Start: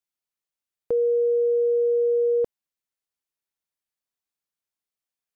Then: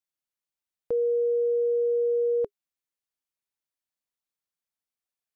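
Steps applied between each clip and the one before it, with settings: band-stop 410 Hz, Q 12; trim -3 dB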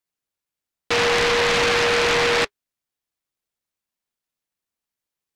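delay time shaken by noise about 1.6 kHz, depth 0.34 ms; trim +5.5 dB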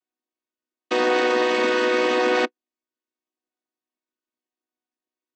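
vocoder on a held chord major triad, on B3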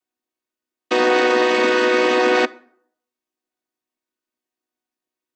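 plate-style reverb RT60 0.65 s, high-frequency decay 0.6×, DRR 18 dB; trim +4 dB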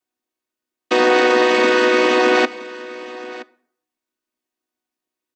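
delay 971 ms -18 dB; trim +2 dB

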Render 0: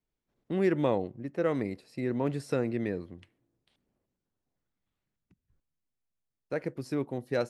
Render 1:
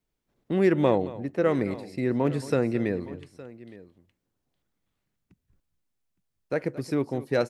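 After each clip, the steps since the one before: multi-tap echo 222/864 ms -17/-19 dB; trim +5 dB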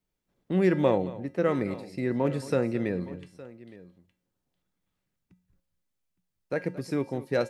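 feedback comb 180 Hz, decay 0.4 s, harmonics odd, mix 70%; trim +7.5 dB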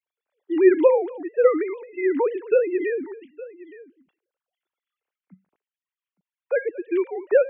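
formants replaced by sine waves; trim +6.5 dB

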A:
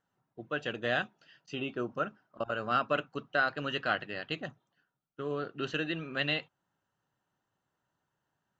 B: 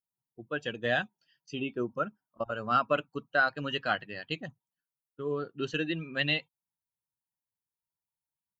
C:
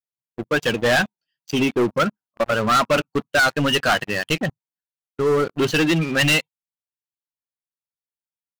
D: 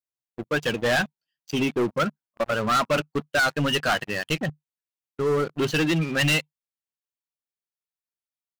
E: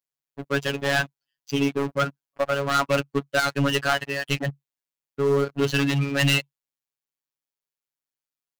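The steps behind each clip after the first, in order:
expander on every frequency bin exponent 1.5; trim +4.5 dB
waveshaping leveller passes 5
dynamic bell 150 Hz, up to +4 dB, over -39 dBFS, Q 7.4; trim -4.5 dB
robot voice 140 Hz; trim +2.5 dB

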